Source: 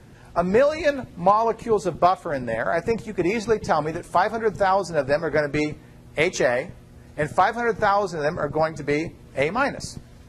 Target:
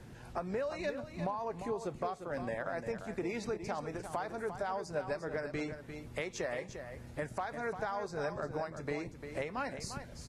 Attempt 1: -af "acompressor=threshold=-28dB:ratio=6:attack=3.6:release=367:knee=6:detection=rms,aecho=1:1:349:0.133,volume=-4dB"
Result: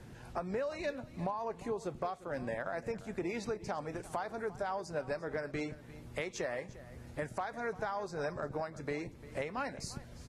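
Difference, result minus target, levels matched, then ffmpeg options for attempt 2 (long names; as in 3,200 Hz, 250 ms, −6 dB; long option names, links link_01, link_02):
echo-to-direct −8.5 dB
-af "acompressor=threshold=-28dB:ratio=6:attack=3.6:release=367:knee=6:detection=rms,aecho=1:1:349:0.355,volume=-4dB"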